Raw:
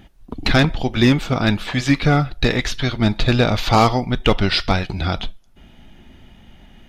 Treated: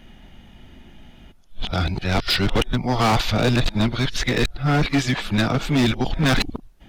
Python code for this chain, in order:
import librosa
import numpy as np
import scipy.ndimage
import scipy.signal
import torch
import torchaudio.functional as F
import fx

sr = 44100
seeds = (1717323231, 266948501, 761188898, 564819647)

y = np.flip(x).copy()
y = np.clip(y, -10.0 ** (-14.5 / 20.0), 10.0 ** (-14.5 / 20.0))